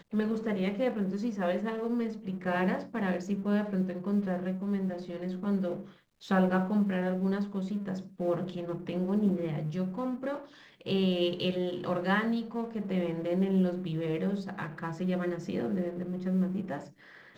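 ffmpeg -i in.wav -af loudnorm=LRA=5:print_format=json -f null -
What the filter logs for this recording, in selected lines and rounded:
"input_i" : "-31.8",
"input_tp" : "-15.0",
"input_lra" : "2.8",
"input_thresh" : "-42.0",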